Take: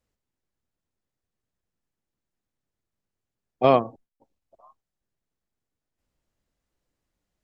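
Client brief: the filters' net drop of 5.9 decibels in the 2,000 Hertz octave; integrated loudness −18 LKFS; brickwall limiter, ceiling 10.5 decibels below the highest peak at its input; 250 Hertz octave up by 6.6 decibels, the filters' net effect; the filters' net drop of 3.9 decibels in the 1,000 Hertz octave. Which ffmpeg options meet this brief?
ffmpeg -i in.wav -af "equalizer=frequency=250:width_type=o:gain=7.5,equalizer=frequency=1000:width_type=o:gain=-5,equalizer=frequency=2000:width_type=o:gain=-7,volume=11.5dB,alimiter=limit=-4.5dB:level=0:latency=1" out.wav

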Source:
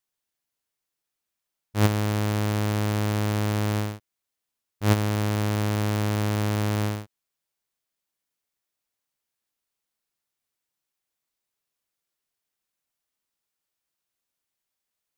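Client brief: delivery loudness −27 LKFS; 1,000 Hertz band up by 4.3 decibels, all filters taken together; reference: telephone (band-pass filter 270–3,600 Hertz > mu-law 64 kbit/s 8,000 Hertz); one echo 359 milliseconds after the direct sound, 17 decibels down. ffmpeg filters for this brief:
ffmpeg -i in.wav -af "highpass=270,lowpass=3600,equalizer=frequency=1000:width_type=o:gain=5.5,aecho=1:1:359:0.141,volume=2.5dB" -ar 8000 -c:a pcm_mulaw out.wav

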